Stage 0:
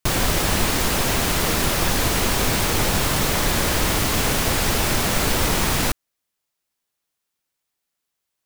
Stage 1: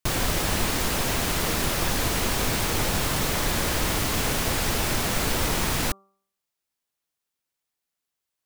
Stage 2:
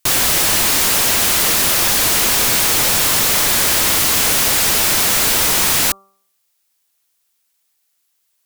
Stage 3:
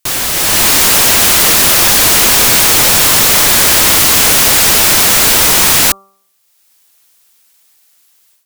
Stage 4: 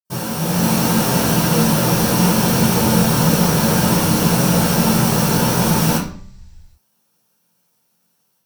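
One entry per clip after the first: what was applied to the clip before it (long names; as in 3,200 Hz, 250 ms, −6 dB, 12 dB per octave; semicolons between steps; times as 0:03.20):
hum removal 195.1 Hz, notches 7; level −4.5 dB
spectral tilt +2.5 dB per octave; in parallel at −8.5 dB: sine wavefolder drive 11 dB, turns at −7.5 dBFS
automatic gain control gain up to 16 dB; level −1 dB
convolution reverb RT60 0.45 s, pre-delay 46 ms; level −2 dB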